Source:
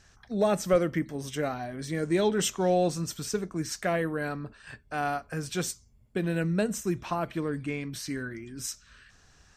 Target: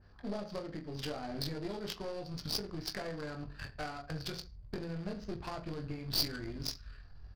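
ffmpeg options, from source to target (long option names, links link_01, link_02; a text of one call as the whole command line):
ffmpeg -i in.wav -filter_complex "[0:a]aresample=16000,acrusher=bits=3:mode=log:mix=0:aa=0.000001,aresample=44100,asubboost=boost=3.5:cutoff=110,acompressor=threshold=-37dB:ratio=16,atempo=1.3,lowpass=frequency=4700:width_type=q:width=15,asplit=2[link_01][link_02];[link_02]aecho=0:1:20|44|72.8|107.4|148.8:0.631|0.398|0.251|0.158|0.1[link_03];[link_01][link_03]amix=inputs=2:normalize=0,adynamicsmooth=sensitivity=4:basefreq=1000,aeval=exprs='(tanh(39.8*val(0)+0.7)-tanh(0.7))/39.8':channel_layout=same,adynamicequalizer=threshold=0.00178:dfrequency=2700:dqfactor=0.7:tfrequency=2700:tqfactor=0.7:attack=5:release=100:ratio=0.375:range=2:mode=boostabove:tftype=highshelf,volume=3.5dB" out.wav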